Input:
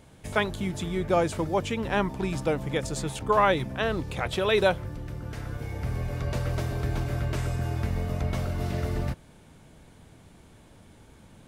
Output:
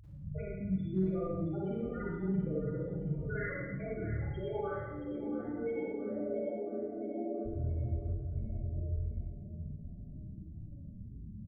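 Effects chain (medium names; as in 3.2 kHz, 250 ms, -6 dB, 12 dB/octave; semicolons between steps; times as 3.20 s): self-modulated delay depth 0.65 ms; 4.78–7.46 s: elliptic high-pass 210 Hz; compression 10:1, threshold -40 dBFS, peak gain reduction 22.5 dB; chorus 1.6 Hz, delay 19.5 ms, depth 7.7 ms; loudest bins only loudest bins 4; hard clipper -38.5 dBFS, distortion -42 dB; feedback delay 674 ms, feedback 45%, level -11 dB; reverberation RT60 1.2 s, pre-delay 37 ms, DRR -6.5 dB; trim +6.5 dB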